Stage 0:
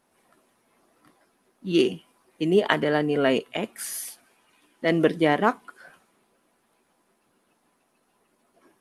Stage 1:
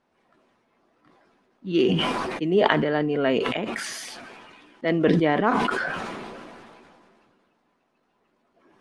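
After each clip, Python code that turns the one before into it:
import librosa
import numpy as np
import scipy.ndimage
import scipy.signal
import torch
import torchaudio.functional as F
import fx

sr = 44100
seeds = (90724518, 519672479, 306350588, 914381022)

y = fx.air_absorb(x, sr, metres=130.0)
y = fx.sustainer(y, sr, db_per_s=24.0)
y = y * librosa.db_to_amplitude(-1.0)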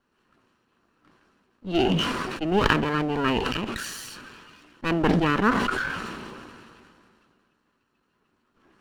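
y = fx.lower_of_two(x, sr, delay_ms=0.71)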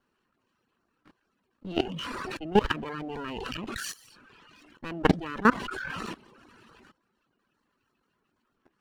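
y = fx.dereverb_blind(x, sr, rt60_s=0.79)
y = fx.level_steps(y, sr, step_db=20)
y = y * librosa.db_to_amplitude(4.0)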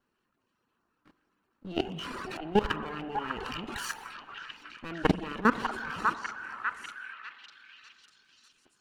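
y = fx.echo_stepped(x, sr, ms=597, hz=1100.0, octaves=0.7, feedback_pct=70, wet_db=-0.5)
y = fx.rev_spring(y, sr, rt60_s=2.4, pass_ms=(43,), chirp_ms=45, drr_db=14.0)
y = y * librosa.db_to_amplitude(-3.0)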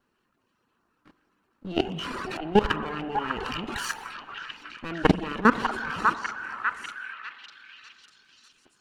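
y = fx.high_shelf(x, sr, hz=11000.0, db=-5.5)
y = y * librosa.db_to_amplitude(5.0)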